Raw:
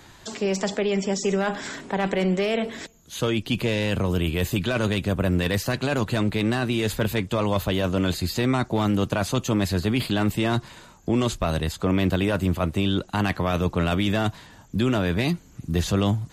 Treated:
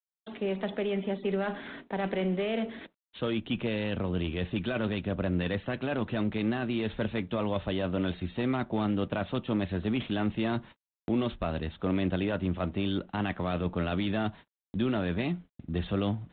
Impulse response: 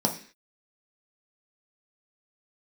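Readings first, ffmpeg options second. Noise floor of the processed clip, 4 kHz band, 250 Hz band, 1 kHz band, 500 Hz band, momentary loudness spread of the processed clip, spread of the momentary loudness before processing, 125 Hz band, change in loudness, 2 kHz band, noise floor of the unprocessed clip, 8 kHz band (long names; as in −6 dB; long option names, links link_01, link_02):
below −85 dBFS, −10.0 dB, −6.0 dB, −7.5 dB, −6.5 dB, 5 LU, 5 LU, −9.0 dB, −7.0 dB, −8.0 dB, −50 dBFS, below −40 dB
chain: -filter_complex "[0:a]agate=range=-35dB:threshold=-37dB:ratio=16:detection=peak,asplit=2[link_01][link_02];[1:a]atrim=start_sample=2205,atrim=end_sample=3969,lowpass=3200[link_03];[link_02][link_03]afir=irnorm=-1:irlink=0,volume=-25.5dB[link_04];[link_01][link_04]amix=inputs=2:normalize=0,volume=-8dB" -ar 8000 -c:a adpcm_g726 -b:a 32k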